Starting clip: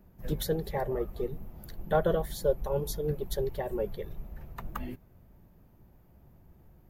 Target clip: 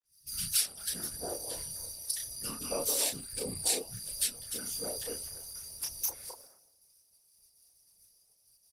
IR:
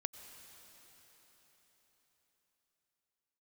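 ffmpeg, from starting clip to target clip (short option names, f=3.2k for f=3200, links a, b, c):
-filter_complex "[0:a]aemphasis=mode=production:type=riaa,afftfilt=real='re*(1-between(b*sr/4096,160,540))':imag='im*(1-between(b*sr/4096,160,540))':win_size=4096:overlap=0.75,agate=range=-48dB:threshold=-56dB:ratio=16:detection=peak,highshelf=f=4.1k:t=q:w=1.5:g=7,acompressor=threshold=-30dB:ratio=2.5,asplit=2[a][b];[b]asetrate=22050,aresample=44100,atempo=2,volume=-4dB[c];[a][c]amix=inputs=2:normalize=0,afreqshift=25,afftfilt=real='hypot(re,im)*cos(2*PI*random(0))':imag='hypot(re,im)*sin(2*PI*random(1))':win_size=512:overlap=0.75,flanger=delay=20:depth=7:speed=0.89,asetrate=34839,aresample=44100,acrossover=split=290|1200[d][e][f];[f]adelay=30[g];[e]adelay=280[h];[d][h][g]amix=inputs=3:normalize=0,volume=8dB" -ar 48000 -c:a libopus -b:a 20k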